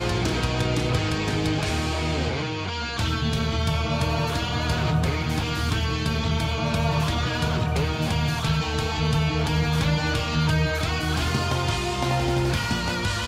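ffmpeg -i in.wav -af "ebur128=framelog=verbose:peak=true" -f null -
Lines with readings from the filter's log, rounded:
Integrated loudness:
  I:         -24.3 LUFS
  Threshold: -34.3 LUFS
Loudness range:
  LRA:         1.6 LU
  Threshold: -44.3 LUFS
  LRA low:   -25.2 LUFS
  LRA high:  -23.6 LUFS
True peak:
  Peak:      -10.0 dBFS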